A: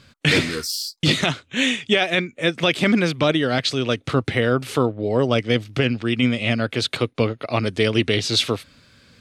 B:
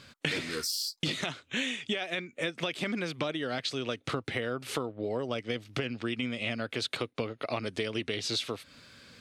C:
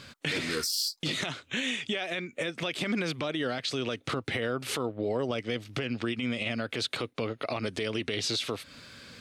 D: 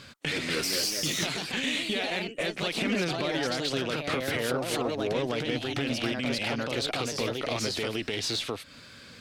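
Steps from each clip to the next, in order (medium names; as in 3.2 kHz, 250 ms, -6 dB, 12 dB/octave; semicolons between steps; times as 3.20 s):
bass shelf 160 Hz -9 dB; compression 10:1, threshold -29 dBFS, peak gain reduction 15.5 dB
peak limiter -25.5 dBFS, peak gain reduction 10 dB; trim +5 dB
ever faster or slower copies 267 ms, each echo +2 st, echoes 2; Chebyshev shaper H 6 -26 dB, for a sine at -16.5 dBFS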